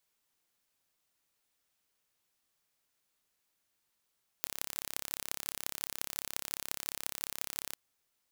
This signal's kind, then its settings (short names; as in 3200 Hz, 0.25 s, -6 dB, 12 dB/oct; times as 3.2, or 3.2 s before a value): pulse train 34.3/s, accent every 6, -5.5 dBFS 3.32 s